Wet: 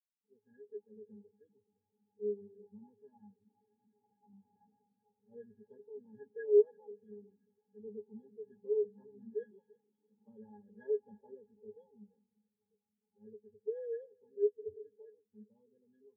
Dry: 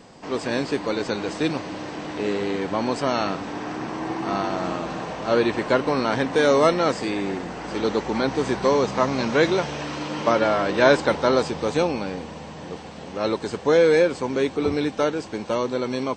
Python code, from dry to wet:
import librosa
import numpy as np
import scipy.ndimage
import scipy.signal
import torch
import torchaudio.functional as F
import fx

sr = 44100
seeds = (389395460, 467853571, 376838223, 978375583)

y = fx.octave_resonator(x, sr, note='G#', decay_s=0.13)
y = fx.echo_split(y, sr, split_hz=370.0, low_ms=186, high_ms=338, feedback_pct=52, wet_db=-12)
y = fx.spectral_expand(y, sr, expansion=2.5)
y = y * 10.0 ** (-1.0 / 20.0)